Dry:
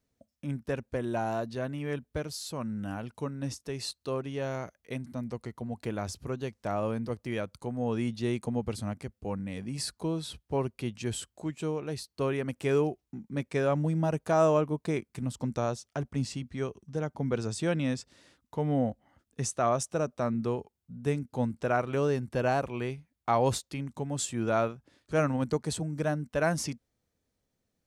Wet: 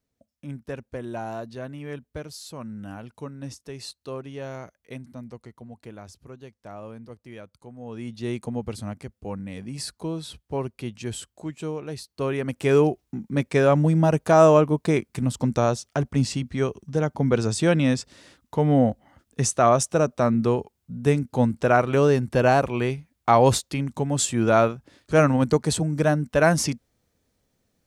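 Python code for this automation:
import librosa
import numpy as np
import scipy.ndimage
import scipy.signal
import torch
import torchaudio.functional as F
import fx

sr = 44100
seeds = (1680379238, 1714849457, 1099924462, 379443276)

y = fx.gain(x, sr, db=fx.line((4.96, -1.5), (6.08, -8.5), (7.81, -8.5), (8.3, 1.5), (12.06, 1.5), (12.87, 9.0)))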